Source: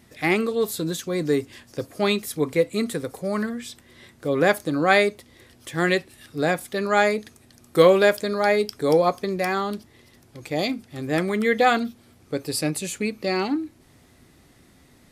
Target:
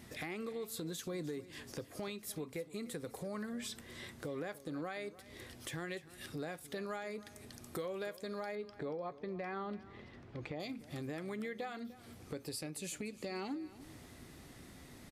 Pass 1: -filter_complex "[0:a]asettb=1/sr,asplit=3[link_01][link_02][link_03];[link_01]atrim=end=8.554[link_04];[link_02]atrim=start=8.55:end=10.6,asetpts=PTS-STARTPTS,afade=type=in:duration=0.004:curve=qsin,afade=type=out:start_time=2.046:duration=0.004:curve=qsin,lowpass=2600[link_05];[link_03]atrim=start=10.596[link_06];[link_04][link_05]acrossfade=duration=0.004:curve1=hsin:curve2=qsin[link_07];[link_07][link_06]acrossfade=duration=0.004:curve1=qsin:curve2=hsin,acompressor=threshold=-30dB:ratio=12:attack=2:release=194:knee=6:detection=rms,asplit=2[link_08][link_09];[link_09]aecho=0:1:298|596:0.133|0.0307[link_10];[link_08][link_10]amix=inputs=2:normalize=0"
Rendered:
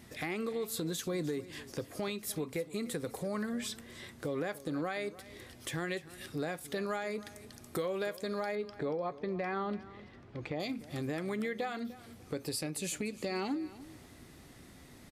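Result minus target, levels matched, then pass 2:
downward compressor: peak gain reduction −6 dB
-filter_complex "[0:a]asettb=1/sr,asplit=3[link_01][link_02][link_03];[link_01]atrim=end=8.554[link_04];[link_02]atrim=start=8.55:end=10.6,asetpts=PTS-STARTPTS,afade=type=in:duration=0.004:curve=qsin,afade=type=out:start_time=2.046:duration=0.004:curve=qsin,lowpass=2600[link_05];[link_03]atrim=start=10.596[link_06];[link_04][link_05]acrossfade=duration=0.004:curve1=hsin:curve2=qsin[link_07];[link_07][link_06]acrossfade=duration=0.004:curve1=qsin:curve2=hsin,acompressor=threshold=-36.5dB:ratio=12:attack=2:release=194:knee=6:detection=rms,asplit=2[link_08][link_09];[link_09]aecho=0:1:298|596:0.133|0.0307[link_10];[link_08][link_10]amix=inputs=2:normalize=0"

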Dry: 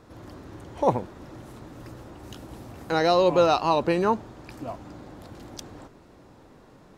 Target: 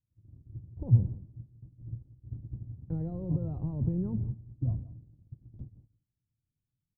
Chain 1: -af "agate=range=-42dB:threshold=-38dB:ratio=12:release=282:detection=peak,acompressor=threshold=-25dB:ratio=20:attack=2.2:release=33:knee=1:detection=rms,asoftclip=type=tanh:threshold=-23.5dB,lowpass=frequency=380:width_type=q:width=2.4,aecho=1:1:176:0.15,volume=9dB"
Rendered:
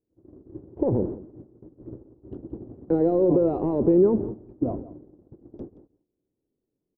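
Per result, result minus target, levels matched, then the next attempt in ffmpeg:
500 Hz band +14.5 dB; soft clipping: distortion +12 dB
-af "agate=range=-42dB:threshold=-38dB:ratio=12:release=282:detection=peak,acompressor=threshold=-25dB:ratio=20:attack=2.2:release=33:knee=1:detection=rms,asoftclip=type=tanh:threshold=-23.5dB,lowpass=frequency=120:width_type=q:width=2.4,aecho=1:1:176:0.15,volume=9dB"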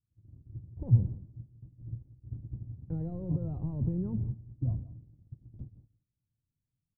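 soft clipping: distortion +12 dB
-af "agate=range=-42dB:threshold=-38dB:ratio=12:release=282:detection=peak,acompressor=threshold=-25dB:ratio=20:attack=2.2:release=33:knee=1:detection=rms,asoftclip=type=tanh:threshold=-16.5dB,lowpass=frequency=120:width_type=q:width=2.4,aecho=1:1:176:0.15,volume=9dB"

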